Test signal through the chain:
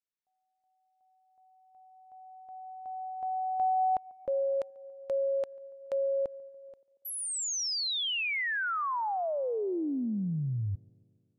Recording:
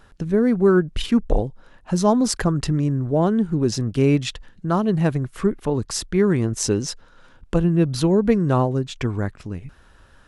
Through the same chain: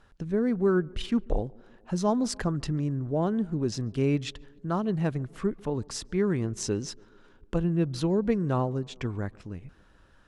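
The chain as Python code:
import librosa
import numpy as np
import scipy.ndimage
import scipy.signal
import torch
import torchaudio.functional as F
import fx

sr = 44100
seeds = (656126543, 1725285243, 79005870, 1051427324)

y = scipy.signal.sosfilt(scipy.signal.bessel(2, 8300.0, 'lowpass', norm='mag', fs=sr, output='sos'), x)
y = fx.echo_tape(y, sr, ms=142, feedback_pct=77, wet_db=-24.0, lp_hz=1300.0, drive_db=7.0, wow_cents=8)
y = F.gain(torch.from_numpy(y), -8.0).numpy()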